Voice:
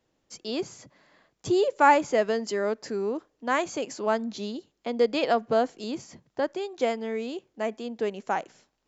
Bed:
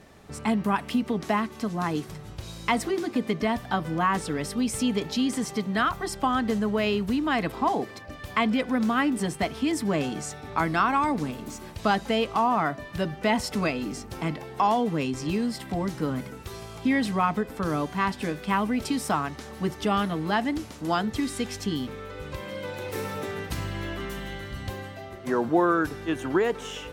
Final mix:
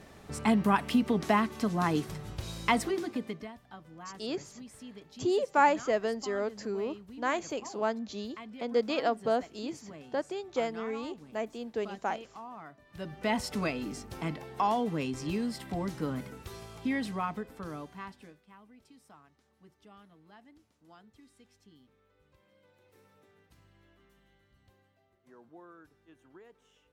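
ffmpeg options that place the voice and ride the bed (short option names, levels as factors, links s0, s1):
-filter_complex "[0:a]adelay=3750,volume=0.562[s0];[1:a]volume=6.31,afade=t=out:st=2.57:d=0.95:silence=0.0841395,afade=t=in:st=12.85:d=0.48:silence=0.149624,afade=t=out:st=16.44:d=2:silence=0.0530884[s1];[s0][s1]amix=inputs=2:normalize=0"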